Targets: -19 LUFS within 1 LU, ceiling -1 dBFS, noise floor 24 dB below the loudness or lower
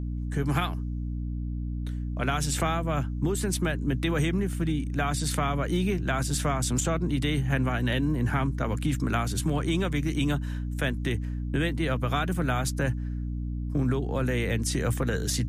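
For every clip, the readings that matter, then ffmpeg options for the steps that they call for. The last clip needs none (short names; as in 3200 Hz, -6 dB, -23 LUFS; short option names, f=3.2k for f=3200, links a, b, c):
hum 60 Hz; harmonics up to 300 Hz; hum level -29 dBFS; loudness -28.0 LUFS; peak -12.5 dBFS; loudness target -19.0 LUFS
-> -af "bandreject=f=60:t=h:w=6,bandreject=f=120:t=h:w=6,bandreject=f=180:t=h:w=6,bandreject=f=240:t=h:w=6,bandreject=f=300:t=h:w=6"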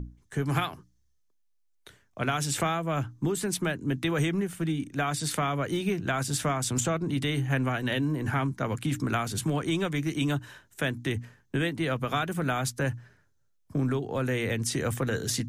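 hum none; loudness -29.5 LUFS; peak -12.5 dBFS; loudness target -19.0 LUFS
-> -af "volume=10.5dB"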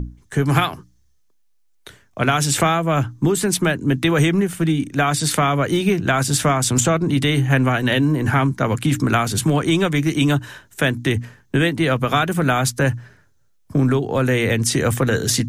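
loudness -19.0 LUFS; peak -2.0 dBFS; noise floor -58 dBFS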